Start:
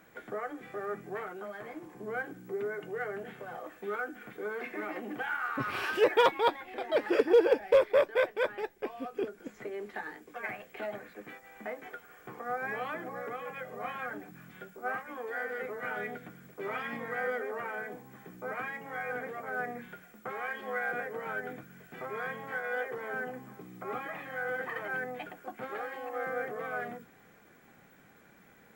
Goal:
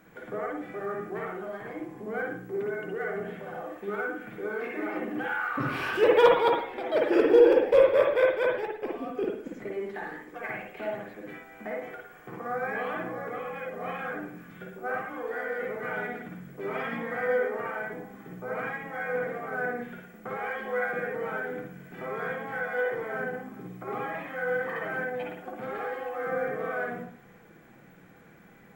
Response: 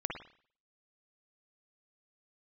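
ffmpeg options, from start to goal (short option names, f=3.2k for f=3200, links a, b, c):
-filter_complex "[0:a]lowshelf=f=440:g=5.5[a];[1:a]atrim=start_sample=2205[b];[a][b]afir=irnorm=-1:irlink=0"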